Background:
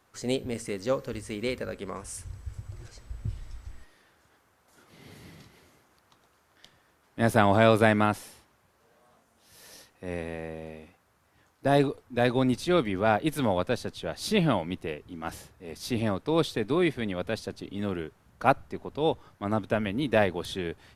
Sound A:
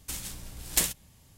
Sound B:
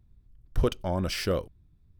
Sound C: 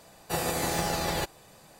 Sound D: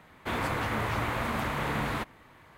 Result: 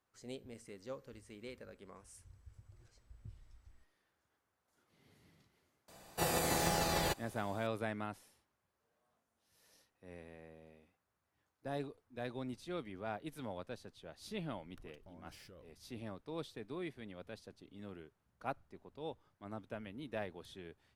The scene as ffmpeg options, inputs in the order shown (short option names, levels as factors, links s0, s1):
-filter_complex "[0:a]volume=0.119[s0];[2:a]acompressor=threshold=0.00708:ratio=6:attack=3.2:release=140:knee=1:detection=peak[s1];[3:a]atrim=end=1.79,asetpts=PTS-STARTPTS,volume=0.596,afade=t=in:d=0.004:c=hsin,afade=t=out:st=1.786:d=0.004:c=hsin,adelay=5880[s2];[s1]atrim=end=1.99,asetpts=PTS-STARTPTS,volume=0.237,afade=t=in:d=0.004:c=hsin,afade=t=out:st=1.986:d=0.004:c=hsin,adelay=14220[s3];[s0][s2][s3]amix=inputs=3:normalize=0"